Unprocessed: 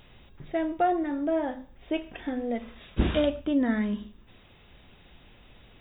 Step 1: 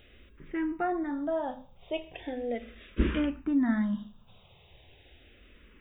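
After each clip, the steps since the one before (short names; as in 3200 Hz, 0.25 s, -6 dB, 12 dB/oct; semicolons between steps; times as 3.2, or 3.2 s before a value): endless phaser -0.38 Hz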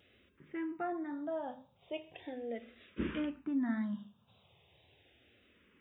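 vibrato 1.9 Hz 37 cents; HPF 87 Hz 24 dB/oct; gain -7.5 dB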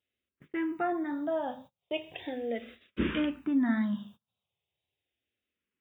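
gate -57 dBFS, range -31 dB; high shelf 3300 Hz +8.5 dB; gain +6.5 dB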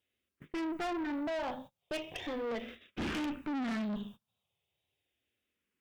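tube stage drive 39 dB, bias 0.55; gain +5.5 dB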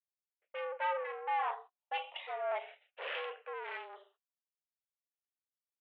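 mistuned SSB +190 Hz 350–2800 Hz; three-band expander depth 100%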